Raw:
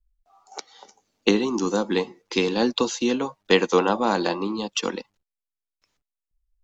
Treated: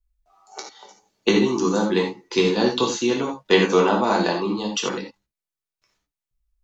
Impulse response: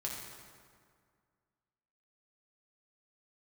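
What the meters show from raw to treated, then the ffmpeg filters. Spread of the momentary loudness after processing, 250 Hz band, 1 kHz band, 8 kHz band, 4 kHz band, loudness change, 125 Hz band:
17 LU, +2.5 dB, +2.5 dB, n/a, +2.0 dB, +2.5 dB, +5.0 dB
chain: -filter_complex "[1:a]atrim=start_sample=2205,atrim=end_sample=4410[a];[0:a][a]afir=irnorm=-1:irlink=0,volume=2.5dB"

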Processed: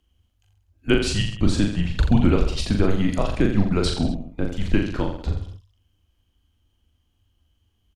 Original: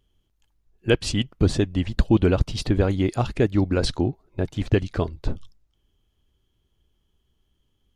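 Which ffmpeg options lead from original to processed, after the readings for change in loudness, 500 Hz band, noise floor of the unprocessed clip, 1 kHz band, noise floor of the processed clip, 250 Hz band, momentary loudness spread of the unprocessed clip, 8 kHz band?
+0.5 dB, -2.0 dB, -71 dBFS, +0.5 dB, -69 dBFS, +2.0 dB, 9 LU, +2.0 dB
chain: -af "aecho=1:1:40|84|132.4|185.6|244.2:0.631|0.398|0.251|0.158|0.1,afreqshift=-100"

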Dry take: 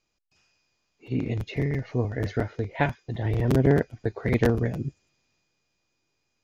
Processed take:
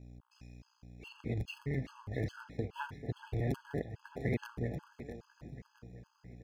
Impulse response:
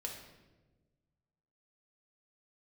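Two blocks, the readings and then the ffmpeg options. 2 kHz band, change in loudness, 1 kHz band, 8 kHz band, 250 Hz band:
-12.0 dB, -13.0 dB, -12.5 dB, n/a, -13.5 dB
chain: -filter_complex "[0:a]acompressor=threshold=-40dB:ratio=3,aeval=exprs='val(0)+0.00282*(sin(2*PI*60*n/s)+sin(2*PI*2*60*n/s)/2+sin(2*PI*3*60*n/s)/3+sin(2*PI*4*60*n/s)/4+sin(2*PI*5*60*n/s)/5)':c=same,aeval=exprs='sgn(val(0))*max(abs(val(0))-0.00119,0)':c=same,asplit=2[a][b];[b]aecho=0:1:661|1322|1983|2644:0.237|0.107|0.048|0.0216[c];[a][c]amix=inputs=2:normalize=0,afftfilt=real='re*gt(sin(2*PI*2.4*pts/sr)*(1-2*mod(floor(b*sr/1024/850),2)),0)':imag='im*gt(sin(2*PI*2.4*pts/sr)*(1-2*mod(floor(b*sr/1024/850),2)),0)':win_size=1024:overlap=0.75,volume=5dB"

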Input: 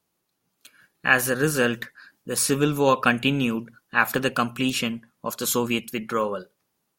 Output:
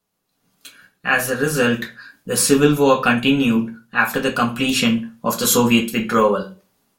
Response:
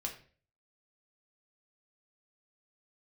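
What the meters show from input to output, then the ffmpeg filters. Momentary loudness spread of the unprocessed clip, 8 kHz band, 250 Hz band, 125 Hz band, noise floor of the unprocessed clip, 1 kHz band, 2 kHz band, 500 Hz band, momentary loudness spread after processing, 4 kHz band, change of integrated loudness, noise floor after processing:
13 LU, +6.0 dB, +8.0 dB, +4.5 dB, -76 dBFS, +5.0 dB, +3.5 dB, +6.5 dB, 10 LU, +6.5 dB, +6.0 dB, -71 dBFS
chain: -filter_complex "[0:a]dynaudnorm=f=240:g=3:m=10.5dB[a];[1:a]atrim=start_sample=2205,asetrate=61740,aresample=44100[b];[a][b]afir=irnorm=-1:irlink=0,volume=3dB"

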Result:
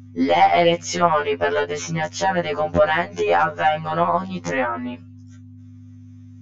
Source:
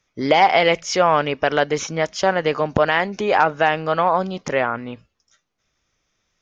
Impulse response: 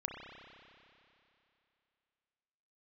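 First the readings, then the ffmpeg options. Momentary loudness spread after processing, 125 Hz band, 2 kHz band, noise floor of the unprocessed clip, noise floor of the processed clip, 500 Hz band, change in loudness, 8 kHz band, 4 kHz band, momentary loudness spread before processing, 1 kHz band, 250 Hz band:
9 LU, +1.0 dB, -2.5 dB, -74 dBFS, -42 dBFS, -1.0 dB, -1.0 dB, n/a, -3.0 dB, 7 LU, -0.5 dB, +0.5 dB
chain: -filter_complex "[0:a]aeval=exprs='0.75*(cos(1*acos(clip(val(0)/0.75,-1,1)))-cos(1*PI/2))+0.0119*(cos(4*acos(clip(val(0)/0.75,-1,1)))-cos(4*PI/2))':c=same,superequalizer=15b=2:16b=0.316,asplit=2[a][b];[b]acompressor=threshold=-22dB:ratio=16,volume=2.5dB[c];[a][c]amix=inputs=2:normalize=0,aeval=exprs='val(0)+0.0316*(sin(2*PI*50*n/s)+sin(2*PI*2*50*n/s)/2+sin(2*PI*3*50*n/s)/3+sin(2*PI*4*50*n/s)/4+sin(2*PI*5*50*n/s)/5)':c=same,aemphasis=mode=reproduction:type=50kf,afftfilt=real='re*2*eq(mod(b,4),0)':imag='im*2*eq(mod(b,4),0)':win_size=2048:overlap=0.75,volume=-1.5dB"

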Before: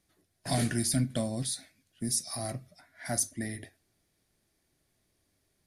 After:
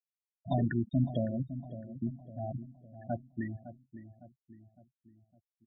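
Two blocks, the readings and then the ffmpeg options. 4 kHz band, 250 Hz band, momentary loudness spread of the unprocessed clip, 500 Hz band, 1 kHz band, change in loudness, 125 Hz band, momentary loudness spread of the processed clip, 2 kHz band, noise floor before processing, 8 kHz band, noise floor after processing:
under -15 dB, 0.0 dB, 15 LU, -0.5 dB, -1.5 dB, -4.0 dB, +0.5 dB, 21 LU, -7.0 dB, -76 dBFS, under -40 dB, under -85 dBFS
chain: -filter_complex "[0:a]lowpass=f=3.8k:w=0.5412,lowpass=f=3.8k:w=1.3066,afftfilt=real='re*gte(hypot(re,im),0.0562)':imag='im*gte(hypot(re,im),0.0562)':win_size=1024:overlap=0.75,asplit=2[a][b];[b]adelay=558,lowpass=f=950:p=1,volume=-12dB,asplit=2[c][d];[d]adelay=558,lowpass=f=950:p=1,volume=0.51,asplit=2[e][f];[f]adelay=558,lowpass=f=950:p=1,volume=0.51,asplit=2[g][h];[h]adelay=558,lowpass=f=950:p=1,volume=0.51,asplit=2[i][j];[j]adelay=558,lowpass=f=950:p=1,volume=0.51[k];[c][e][g][i][k]amix=inputs=5:normalize=0[l];[a][l]amix=inputs=2:normalize=0"

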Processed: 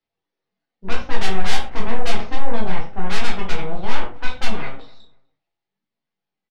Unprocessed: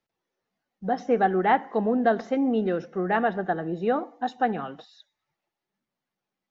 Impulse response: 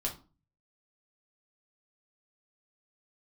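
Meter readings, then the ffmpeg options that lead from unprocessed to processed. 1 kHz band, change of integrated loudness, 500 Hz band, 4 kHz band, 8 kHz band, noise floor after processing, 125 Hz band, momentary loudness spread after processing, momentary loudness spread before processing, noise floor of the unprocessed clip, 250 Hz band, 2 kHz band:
-4.0 dB, -2.0 dB, -5.5 dB, +16.0 dB, n/a, -84 dBFS, +7.0 dB, 6 LU, 7 LU, under -85 dBFS, -5.0 dB, +3.5 dB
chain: -filter_complex "[0:a]acrossover=split=250[a][b];[a]acompressor=threshold=-41dB:ratio=6[c];[c][b]amix=inputs=2:normalize=0,aeval=exprs='0.316*(cos(1*acos(clip(val(0)/0.316,-1,1)))-cos(1*PI/2))+0.0891*(cos(4*acos(clip(val(0)/0.316,-1,1)))-cos(4*PI/2))+0.02*(cos(7*acos(clip(val(0)/0.316,-1,1)))-cos(7*PI/2))+0.0891*(cos(8*acos(clip(val(0)/0.316,-1,1)))-cos(8*PI/2))':c=same,lowpass=f=4.4k:t=q:w=1.6,asplit=2[d][e];[e]acontrast=78,volume=-0.5dB[f];[d][f]amix=inputs=2:normalize=0,asoftclip=type=tanh:threshold=-10dB,asplit=2[g][h];[h]adelay=249,lowpass=f=1.5k:p=1,volume=-22dB,asplit=2[i][j];[j]adelay=249,lowpass=f=1.5k:p=1,volume=0.28[k];[g][i][k]amix=inputs=3:normalize=0[l];[1:a]atrim=start_sample=2205,atrim=end_sample=4410,asetrate=29988,aresample=44100[m];[l][m]afir=irnorm=-1:irlink=0,volume=-13dB"

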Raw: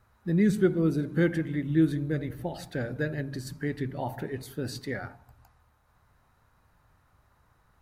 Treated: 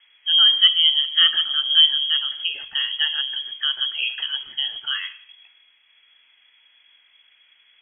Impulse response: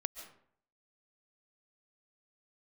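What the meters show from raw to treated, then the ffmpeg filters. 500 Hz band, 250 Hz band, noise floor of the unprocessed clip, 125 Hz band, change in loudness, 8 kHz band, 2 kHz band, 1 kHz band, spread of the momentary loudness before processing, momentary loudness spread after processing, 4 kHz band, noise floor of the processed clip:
under -25 dB, under -35 dB, -66 dBFS, under -35 dB, +11.5 dB, under -30 dB, +9.0 dB, +2.0 dB, 12 LU, 12 LU, +35.0 dB, -59 dBFS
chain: -filter_complex "[0:a]lowpass=f=2.9k:t=q:w=0.5098,lowpass=f=2.9k:t=q:w=0.6013,lowpass=f=2.9k:t=q:w=0.9,lowpass=f=2.9k:t=q:w=2.563,afreqshift=-3400,bandreject=f=45.83:t=h:w=4,bandreject=f=91.66:t=h:w=4,bandreject=f=137.49:t=h:w=4,bandreject=f=183.32:t=h:w=4,bandreject=f=229.15:t=h:w=4,asplit=2[a][b];[1:a]atrim=start_sample=2205,asetrate=52920,aresample=44100[c];[b][c]afir=irnorm=-1:irlink=0,volume=-8.5dB[d];[a][d]amix=inputs=2:normalize=0,volume=5.5dB"

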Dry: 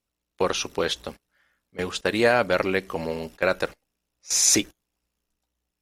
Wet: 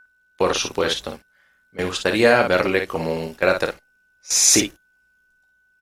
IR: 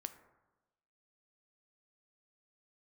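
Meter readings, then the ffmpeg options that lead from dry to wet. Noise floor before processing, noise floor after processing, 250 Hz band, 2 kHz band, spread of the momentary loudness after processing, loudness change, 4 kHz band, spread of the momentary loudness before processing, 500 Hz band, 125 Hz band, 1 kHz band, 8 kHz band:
-83 dBFS, -63 dBFS, +4.5 dB, +5.0 dB, 14 LU, +4.5 dB, +4.5 dB, 14 LU, +4.5 dB, +4.5 dB, +4.5 dB, +4.5 dB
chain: -af "aeval=exprs='val(0)+0.00251*sin(2*PI*1500*n/s)':c=same,aecho=1:1:25|55:0.266|0.473,volume=3.5dB"

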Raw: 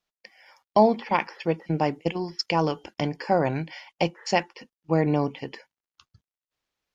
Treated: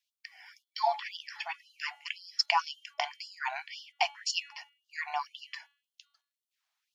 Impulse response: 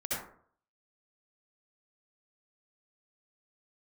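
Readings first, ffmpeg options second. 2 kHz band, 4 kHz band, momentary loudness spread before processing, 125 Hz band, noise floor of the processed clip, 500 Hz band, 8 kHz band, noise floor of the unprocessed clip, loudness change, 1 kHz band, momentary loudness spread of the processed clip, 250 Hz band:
-2.0 dB, +1.5 dB, 10 LU, under -40 dB, under -85 dBFS, -17.5 dB, n/a, under -85 dBFS, -8.5 dB, -6.5 dB, 17 LU, under -40 dB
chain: -af "bandreject=f=284.8:t=h:w=4,bandreject=f=569.6:t=h:w=4,bandreject=f=854.4:t=h:w=4,bandreject=f=1.1392k:t=h:w=4,bandreject=f=1.424k:t=h:w=4,bandreject=f=1.7088k:t=h:w=4,bandreject=f=1.9936k:t=h:w=4,bandreject=f=2.2784k:t=h:w=4,bandreject=f=2.5632k:t=h:w=4,bandreject=f=2.848k:t=h:w=4,bandreject=f=3.1328k:t=h:w=4,bandreject=f=3.4176k:t=h:w=4,bandreject=f=3.7024k:t=h:w=4,bandreject=f=3.9872k:t=h:w=4,bandreject=f=4.272k:t=h:w=4,afftfilt=real='re*gte(b*sr/1024,610*pow(2900/610,0.5+0.5*sin(2*PI*1.9*pts/sr)))':imag='im*gte(b*sr/1024,610*pow(2900/610,0.5+0.5*sin(2*PI*1.9*pts/sr)))':win_size=1024:overlap=0.75,volume=1.5dB"

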